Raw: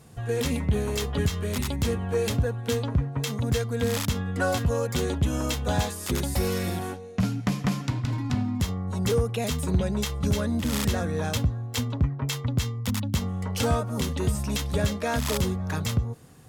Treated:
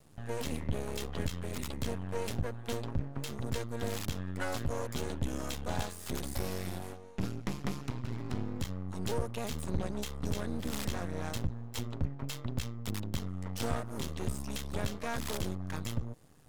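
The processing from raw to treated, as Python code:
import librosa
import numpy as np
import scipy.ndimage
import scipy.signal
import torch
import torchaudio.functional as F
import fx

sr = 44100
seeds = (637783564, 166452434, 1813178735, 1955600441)

y = np.maximum(x, 0.0)
y = F.gain(torch.from_numpy(y), -6.0).numpy()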